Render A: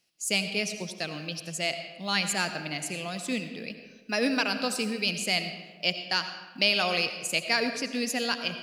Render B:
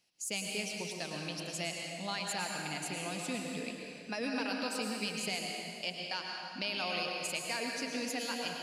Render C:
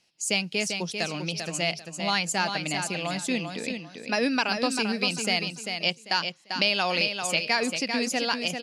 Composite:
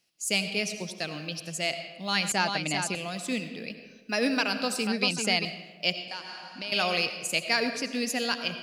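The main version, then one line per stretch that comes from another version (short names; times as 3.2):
A
2.32–2.95 from C
4.87–5.45 from C
6.08–6.72 from B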